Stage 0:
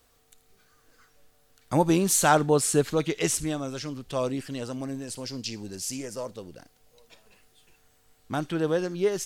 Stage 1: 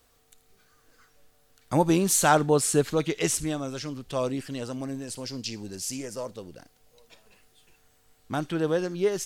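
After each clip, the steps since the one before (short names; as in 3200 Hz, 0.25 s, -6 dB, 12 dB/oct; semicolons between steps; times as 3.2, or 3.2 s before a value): nothing audible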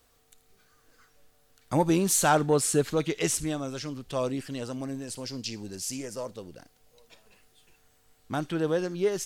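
soft clip -9.5 dBFS, distortion -23 dB; gain -1 dB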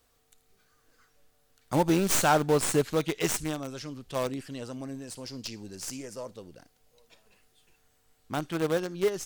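tracing distortion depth 0.05 ms; in parallel at -8 dB: bit-crush 4-bit; on the sum: gain -3.5 dB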